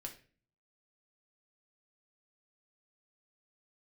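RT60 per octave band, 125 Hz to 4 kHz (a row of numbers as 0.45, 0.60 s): 0.75, 0.60, 0.45, 0.35, 0.40, 0.35 s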